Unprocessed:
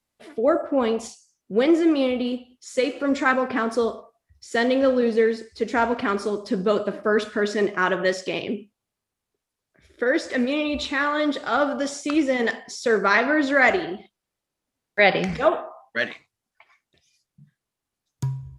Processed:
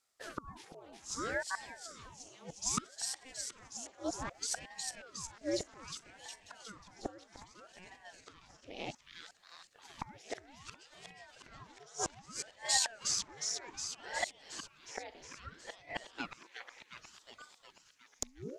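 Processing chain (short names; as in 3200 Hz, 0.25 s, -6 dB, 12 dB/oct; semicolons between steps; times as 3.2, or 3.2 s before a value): reverse delay 0.358 s, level -13 dB; flipped gate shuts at -21 dBFS, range -31 dB; fifteen-band EQ 250 Hz -10 dB, 630 Hz +4 dB, 1600 Hz -6 dB, 6300 Hz +11 dB; on a send: thin delay 0.362 s, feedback 66%, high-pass 1400 Hz, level -3.5 dB; on the sum: ring modulator with a swept carrier 730 Hz, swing 85%, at 0.63 Hz; gain +1 dB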